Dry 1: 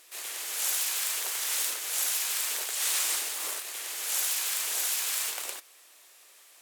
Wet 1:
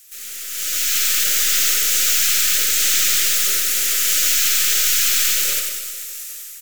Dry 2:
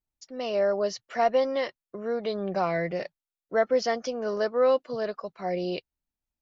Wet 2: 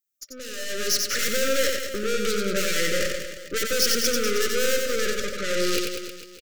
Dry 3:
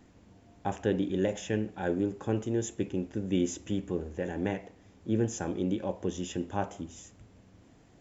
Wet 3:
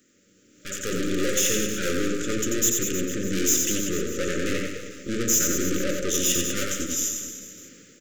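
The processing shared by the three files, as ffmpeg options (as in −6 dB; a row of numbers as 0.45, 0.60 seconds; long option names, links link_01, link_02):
-filter_complex "[0:a]highpass=230,acrossover=split=5100[link_01][link_02];[link_02]acompressor=threshold=-42dB:ratio=4:attack=1:release=60[link_03];[link_01][link_03]amix=inputs=2:normalize=0,aeval=exprs='(tanh(112*val(0)+0.75)-tanh(0.75))/112':channel_layout=same,highshelf=frequency=2200:gain=8,dynaudnorm=framelen=480:gausssize=3:maxgain=15dB,aexciter=amount=1.2:drive=8.5:freq=5900,aecho=1:1:90|193.5|312.5|449.4|606.8:0.631|0.398|0.251|0.158|0.1,afftfilt=real='re*(1-between(b*sr/4096,600,1200))':imag='im*(1-between(b*sr/4096,600,1200))':win_size=4096:overlap=0.75"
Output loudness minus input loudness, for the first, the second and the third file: +13.5, +3.5, +8.0 LU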